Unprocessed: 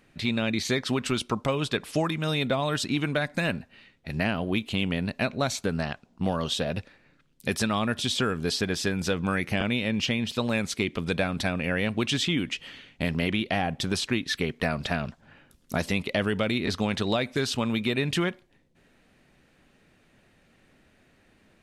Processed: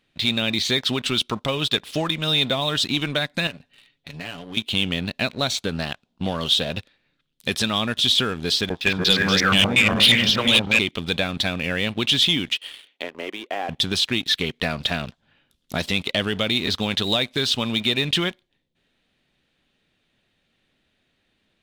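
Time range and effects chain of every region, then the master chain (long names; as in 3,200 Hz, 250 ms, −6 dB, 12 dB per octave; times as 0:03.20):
0:03.47–0:04.57: comb filter 7 ms, depth 66% + downward compressor 2 to 1, threshold −40 dBFS
0:08.69–0:10.79: feedback delay that plays each chunk backwards 179 ms, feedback 53%, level −0.5 dB + noise gate with hold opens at −17 dBFS, closes at −28 dBFS + low-pass on a step sequencer 8.4 Hz 860–5,400 Hz
0:12.54–0:13.69: treble cut that deepens with the level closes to 1,400 Hz, closed at −26 dBFS + high-pass filter 340 Hz 24 dB per octave + one half of a high-frequency compander decoder only
whole clip: parametric band 3,500 Hz +12.5 dB 0.79 octaves; leveller curve on the samples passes 2; level −6.5 dB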